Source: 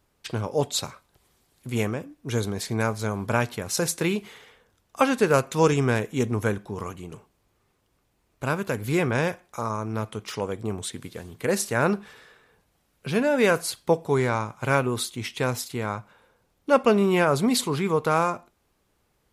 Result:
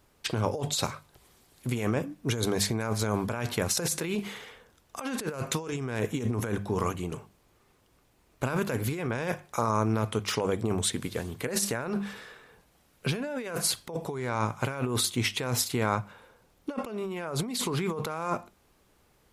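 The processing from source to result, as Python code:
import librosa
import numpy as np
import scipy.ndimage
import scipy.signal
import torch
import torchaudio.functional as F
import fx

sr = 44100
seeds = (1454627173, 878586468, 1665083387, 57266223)

y = fx.hum_notches(x, sr, base_hz=50, count=4)
y = fx.over_compress(y, sr, threshold_db=-30.0, ratio=-1.0)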